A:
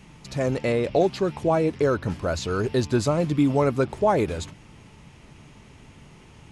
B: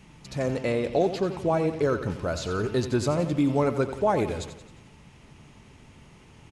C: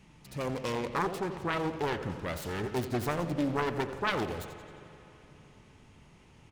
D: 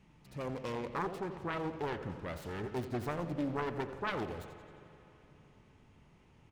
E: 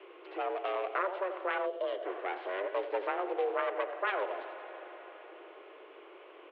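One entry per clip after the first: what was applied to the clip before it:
feedback delay 88 ms, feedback 53%, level -11.5 dB; trim -3 dB
self-modulated delay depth 0.73 ms; spring tank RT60 3.4 s, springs 41/54/58 ms, chirp 35 ms, DRR 12.5 dB; trim -6 dB
treble shelf 3.5 kHz -8 dB; trim -5 dB
time-frequency box 1.65–2.05 s, 510–2600 Hz -12 dB; mistuned SSB +190 Hz 180–3100 Hz; three bands compressed up and down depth 40%; trim +4.5 dB

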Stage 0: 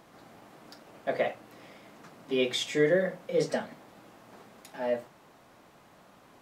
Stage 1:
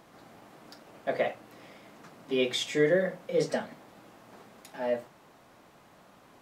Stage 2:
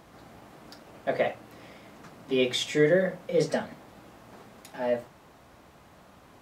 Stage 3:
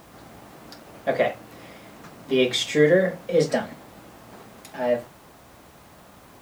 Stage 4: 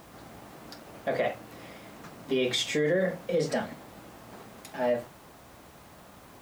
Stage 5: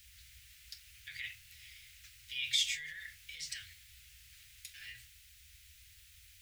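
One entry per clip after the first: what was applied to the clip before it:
no audible change
peaking EQ 63 Hz +13 dB 1.3 oct; trim +2 dB
added noise white -64 dBFS; trim +4.5 dB
peak limiter -16 dBFS, peak gain reduction 9.5 dB; trim -2 dB
inverse Chebyshev band-stop 180–1000 Hz, stop band 50 dB; trim -1 dB

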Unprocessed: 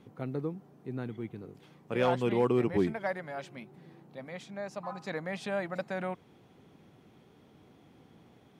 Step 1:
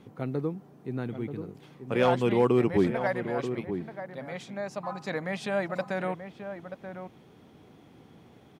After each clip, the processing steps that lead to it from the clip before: echo from a far wall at 160 m, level -9 dB; trim +4 dB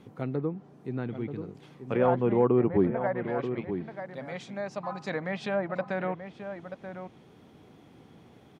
low-pass that closes with the level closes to 1.3 kHz, closed at -23.5 dBFS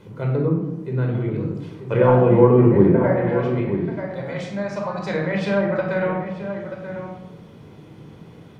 simulated room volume 2200 m³, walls furnished, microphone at 4.9 m; trim +3.5 dB

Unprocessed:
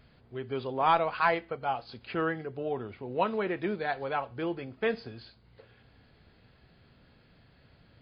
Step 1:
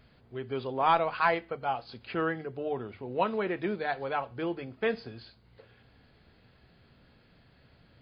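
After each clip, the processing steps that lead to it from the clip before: hum notches 50/100/150 Hz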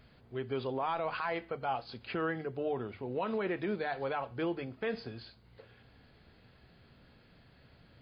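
peak limiter -25 dBFS, peak gain reduction 12 dB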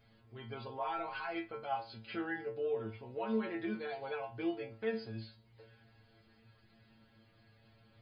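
inharmonic resonator 110 Hz, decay 0.37 s, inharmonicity 0.002; trim +6.5 dB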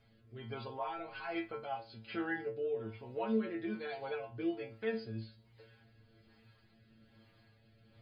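rotary cabinet horn 1.2 Hz; trim +2 dB

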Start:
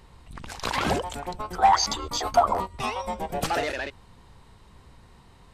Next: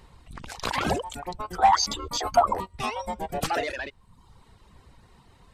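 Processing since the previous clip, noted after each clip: reverb removal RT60 0.8 s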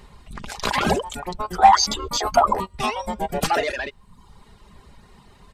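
comb 4.9 ms, depth 38%; trim +5 dB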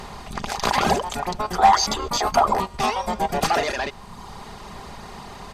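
spectral levelling over time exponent 0.6; trim -3.5 dB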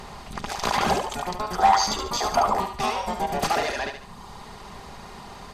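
thinning echo 72 ms, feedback 38%, high-pass 420 Hz, level -6 dB; trim -3.5 dB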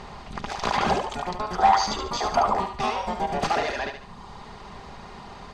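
distance through air 82 m

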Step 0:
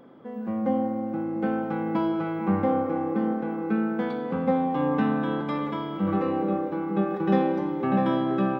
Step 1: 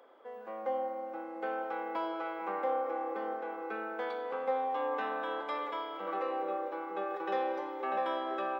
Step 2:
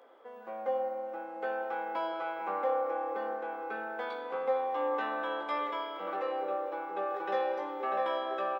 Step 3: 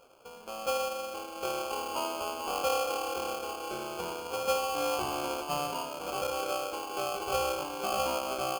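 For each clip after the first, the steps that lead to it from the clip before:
high-pass 470 Hz 24 dB/octave; in parallel at -2.5 dB: peak limiter -24 dBFS, peak gain reduction 9 dB; on the sum: trim -8 dB
doubling 17 ms -5 dB
in parallel at -10 dB: hysteresis with a dead band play -41 dBFS; on the sum: sample-rate reducer 1.9 kHz, jitter 0%; trim -1.5 dB

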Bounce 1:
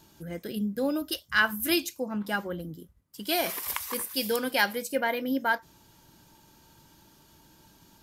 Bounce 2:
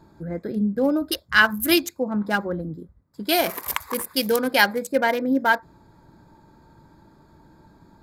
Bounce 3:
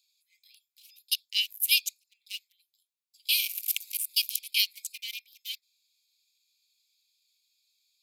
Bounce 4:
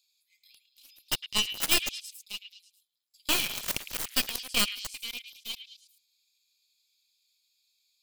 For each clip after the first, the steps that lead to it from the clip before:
local Wiener filter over 15 samples; trim +7.5 dB
steep high-pass 2.4 kHz 96 dB/octave
tracing distortion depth 0.33 ms; repeats whose band climbs or falls 108 ms, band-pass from 2.7 kHz, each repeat 0.7 oct, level -9 dB

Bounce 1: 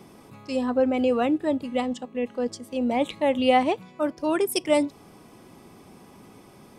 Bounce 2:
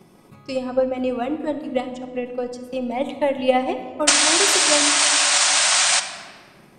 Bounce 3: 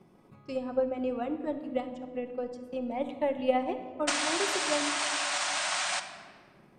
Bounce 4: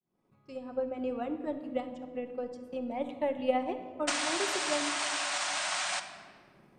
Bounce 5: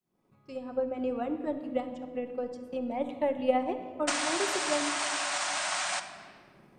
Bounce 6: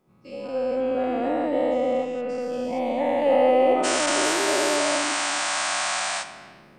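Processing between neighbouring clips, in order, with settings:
painted sound noise, 4.07–6.00 s, 560–9300 Hz -15 dBFS; transient shaper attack +8 dB, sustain -1 dB; simulated room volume 2300 m³, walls mixed, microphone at 0.97 m; trim -3.5 dB
treble shelf 3.3 kHz -11 dB; trim -8 dB
fade-in on the opening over 1.13 s; trim -2 dB
dynamic bell 3.4 kHz, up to -3 dB, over -48 dBFS, Q 0.82; trim +2.5 dB
every event in the spectrogram widened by 480 ms

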